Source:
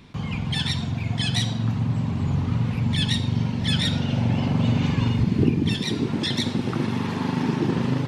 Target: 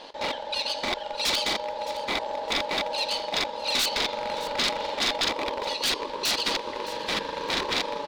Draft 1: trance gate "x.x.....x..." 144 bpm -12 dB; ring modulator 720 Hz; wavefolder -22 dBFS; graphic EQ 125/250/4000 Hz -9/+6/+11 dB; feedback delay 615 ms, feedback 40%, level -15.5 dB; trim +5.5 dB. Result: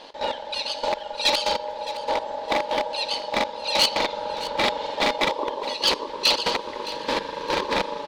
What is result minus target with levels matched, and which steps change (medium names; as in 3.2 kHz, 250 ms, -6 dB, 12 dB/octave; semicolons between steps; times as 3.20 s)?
wavefolder: distortion -9 dB
change: wavefolder -29.5 dBFS